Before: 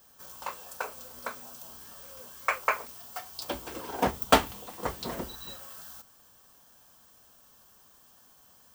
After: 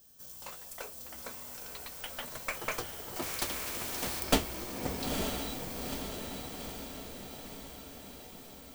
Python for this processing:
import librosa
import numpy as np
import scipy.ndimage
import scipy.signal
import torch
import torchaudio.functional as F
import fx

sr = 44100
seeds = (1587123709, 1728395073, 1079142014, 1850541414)

y = fx.tracing_dist(x, sr, depth_ms=0.095)
y = fx.peak_eq(y, sr, hz=1100.0, db=-13.5, octaves=2.1)
y = fx.echo_diffused(y, sr, ms=919, feedback_pct=61, wet_db=-4.0)
y = fx.echo_pitch(y, sr, ms=178, semitones=5, count=3, db_per_echo=-6.0)
y = fx.spectral_comp(y, sr, ratio=2.0, at=(3.22, 4.2))